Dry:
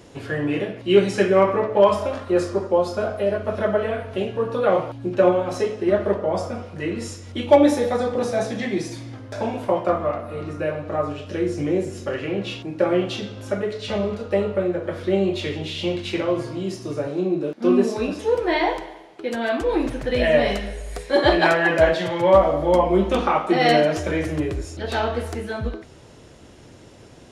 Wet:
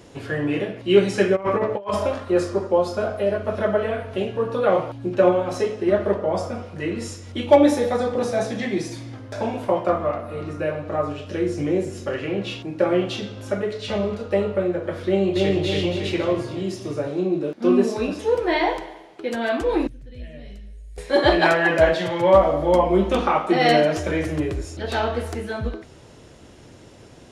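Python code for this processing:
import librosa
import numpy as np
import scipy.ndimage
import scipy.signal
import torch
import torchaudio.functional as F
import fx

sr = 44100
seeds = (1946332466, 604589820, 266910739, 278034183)

y = fx.over_compress(x, sr, threshold_db=-21.0, ratio=-0.5, at=(1.35, 2.12), fade=0.02)
y = fx.echo_throw(y, sr, start_s=15.07, length_s=0.5, ms=280, feedback_pct=55, wet_db=-1.0)
y = fx.tone_stack(y, sr, knobs='10-0-1', at=(19.87, 20.98))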